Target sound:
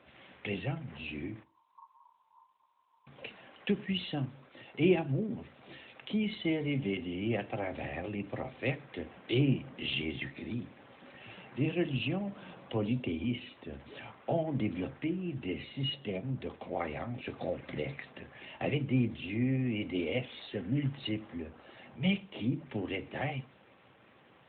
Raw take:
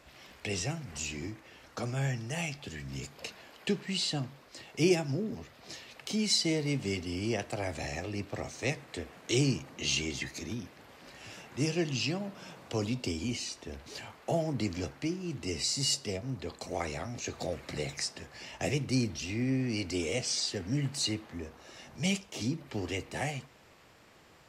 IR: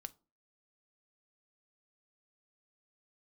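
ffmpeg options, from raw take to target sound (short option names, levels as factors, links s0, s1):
-filter_complex "[0:a]asettb=1/sr,asplit=3[s0][s1][s2];[s0]atrim=end=1.434[s3];[s1]atrim=start=1.43:end=3.07,asetpts=PTS-STARTPTS,afade=t=in:d=0.004:c=qsin,afade=t=out:st=1.636:d=0.004:c=qsin,asuperpass=centerf=990:order=20:qfactor=4.9[s4];[s2]atrim=start=3.066[s5];[s3][s4]acrossfade=d=0.004:c1=hsin:c2=qsin[s6];[s6][s5]acrossfade=d=0.004:c1=qsin:c2=hsin[s7];[1:a]atrim=start_sample=2205[s8];[s7][s8]afir=irnorm=-1:irlink=0,volume=1.78" -ar 8000 -c:a libopencore_amrnb -b:a 12200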